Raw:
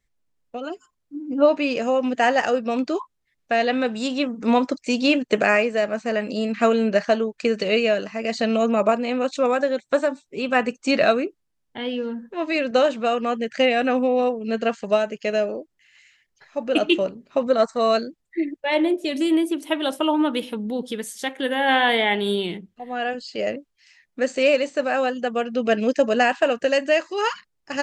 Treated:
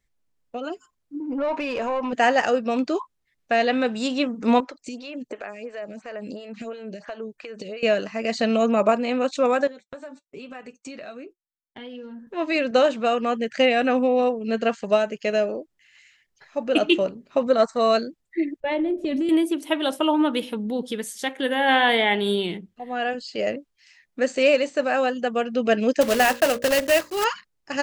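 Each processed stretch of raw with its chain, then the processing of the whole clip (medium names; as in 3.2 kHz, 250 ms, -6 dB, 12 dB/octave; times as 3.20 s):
1.20–2.13 s: peaking EQ 990 Hz +13 dB 0.21 oct + compression 3:1, threshold -27 dBFS + overdrive pedal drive 16 dB, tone 1.6 kHz, clips at -16.5 dBFS
4.60–7.83 s: compression 8:1, threshold -28 dBFS + lamp-driven phase shifter 2.9 Hz
9.67–12.27 s: gate -42 dBFS, range -25 dB + compression 8:1, threshold -31 dBFS + flange 1.1 Hz, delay 6.4 ms, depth 1.8 ms, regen -48%
18.60–19.29 s: RIAA curve playback + compression, threshold -21 dBFS + band-stop 1 kHz, Q 17
26.01–27.25 s: block-companded coder 3-bit + hum notches 60/120/180/240/300/360/420/480/540/600 Hz
whole clip: none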